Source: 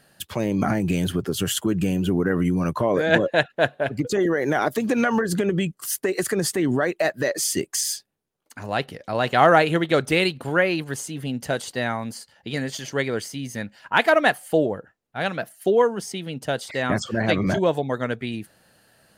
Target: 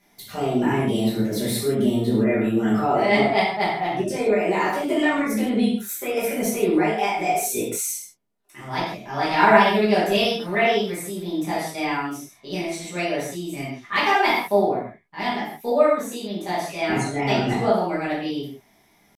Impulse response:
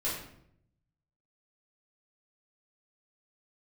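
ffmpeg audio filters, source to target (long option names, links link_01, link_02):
-filter_complex "[0:a]asetrate=55563,aresample=44100,atempo=0.793701[link_01];[1:a]atrim=start_sample=2205,afade=type=out:start_time=0.17:duration=0.01,atrim=end_sample=7938,asetrate=29547,aresample=44100[link_02];[link_01][link_02]afir=irnorm=-1:irlink=0,volume=-8.5dB"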